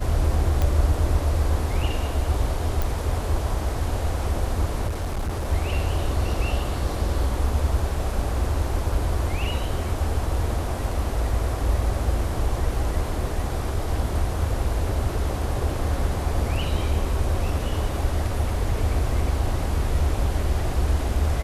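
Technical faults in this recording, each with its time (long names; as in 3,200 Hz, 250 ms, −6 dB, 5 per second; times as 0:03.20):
0:00.62: click
0:02.82: click
0:04.87–0:05.50: clipping −22.5 dBFS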